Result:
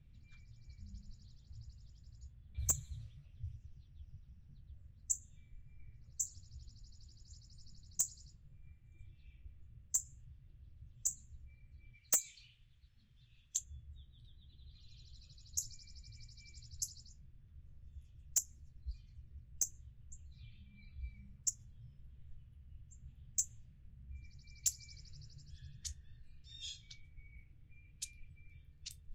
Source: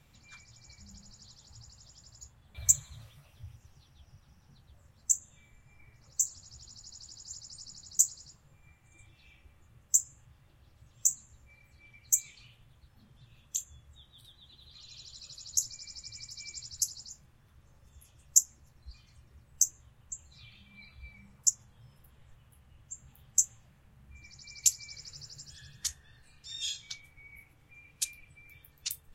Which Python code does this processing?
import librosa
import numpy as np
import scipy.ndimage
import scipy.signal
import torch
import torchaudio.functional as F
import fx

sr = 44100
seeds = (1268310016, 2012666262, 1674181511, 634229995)

y = fx.tone_stack(x, sr, knobs='10-0-1')
y = fx.env_lowpass(y, sr, base_hz=2800.0, full_db=-46.5)
y = fx.tilt_shelf(y, sr, db=-9.5, hz=1100.0, at=(11.94, 13.57), fade=0.02)
y = 10.0 ** (-34.0 / 20.0) * (np.abs((y / 10.0 ** (-34.0 / 20.0) + 3.0) % 4.0 - 2.0) - 1.0)
y = y * 10.0 ** (12.0 / 20.0)